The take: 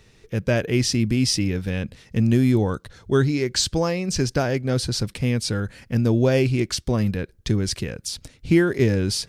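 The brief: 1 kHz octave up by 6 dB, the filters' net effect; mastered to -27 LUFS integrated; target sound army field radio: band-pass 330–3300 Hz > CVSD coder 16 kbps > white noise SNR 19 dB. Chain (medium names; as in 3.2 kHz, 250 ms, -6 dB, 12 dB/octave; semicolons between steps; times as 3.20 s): band-pass 330–3300 Hz; peaking EQ 1 kHz +8.5 dB; CVSD coder 16 kbps; white noise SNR 19 dB; trim +0.5 dB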